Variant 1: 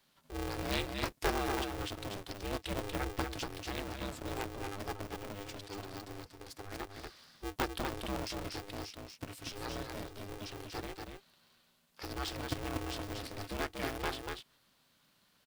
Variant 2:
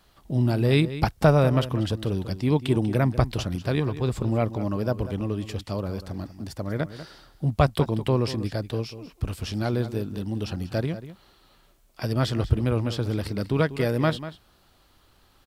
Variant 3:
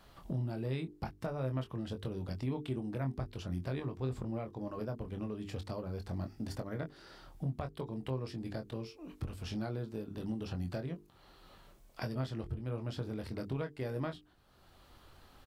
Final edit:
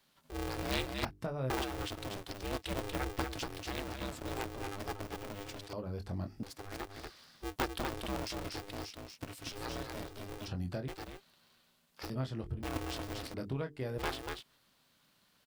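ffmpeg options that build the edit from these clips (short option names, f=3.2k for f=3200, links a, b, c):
-filter_complex "[2:a]asplit=5[a][b][c][d][e];[0:a]asplit=6[f][g][h][i][j][k];[f]atrim=end=1.052[l];[a]atrim=start=1.048:end=1.502[m];[g]atrim=start=1.498:end=5.732[n];[b]atrim=start=5.728:end=6.432[o];[h]atrim=start=6.428:end=10.482[p];[c]atrim=start=10.478:end=10.882[q];[i]atrim=start=10.878:end=12.102[r];[d]atrim=start=12.098:end=12.632[s];[j]atrim=start=12.628:end=13.342[t];[e]atrim=start=13.338:end=13.982[u];[k]atrim=start=13.978[v];[l][m]acrossfade=d=0.004:c1=hsin:c2=hsin[w];[w][n]acrossfade=d=0.004:c1=hsin:c2=hsin[x];[x][o]acrossfade=d=0.004:c1=hsin:c2=hsin[y];[y][p]acrossfade=d=0.004:c1=hsin:c2=hsin[z];[z][q]acrossfade=d=0.004:c1=hsin:c2=hsin[aa];[aa][r]acrossfade=d=0.004:c1=hsin:c2=hsin[ab];[ab][s]acrossfade=d=0.004:c1=hsin:c2=hsin[ac];[ac][t]acrossfade=d=0.004:c1=hsin:c2=hsin[ad];[ad][u]acrossfade=d=0.004:c1=hsin:c2=hsin[ae];[ae][v]acrossfade=d=0.004:c1=hsin:c2=hsin"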